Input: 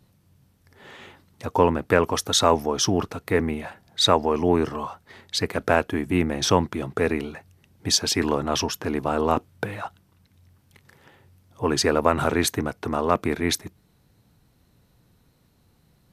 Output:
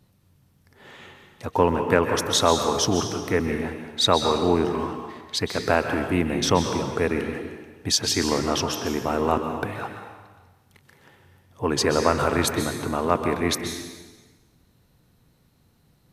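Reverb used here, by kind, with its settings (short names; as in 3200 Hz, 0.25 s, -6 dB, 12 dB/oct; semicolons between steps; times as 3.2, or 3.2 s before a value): plate-style reverb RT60 1.3 s, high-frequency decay 0.95×, pre-delay 0.115 s, DRR 5 dB; gain -1 dB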